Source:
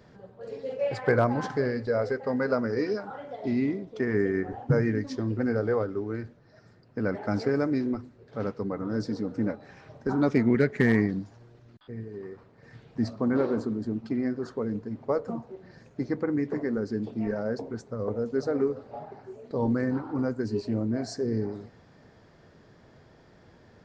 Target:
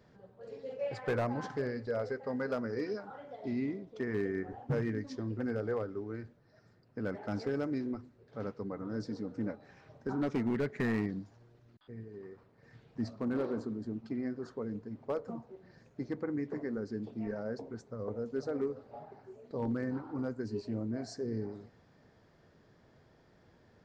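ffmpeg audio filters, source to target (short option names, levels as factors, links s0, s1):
-af "volume=7.94,asoftclip=hard,volume=0.126,volume=0.398"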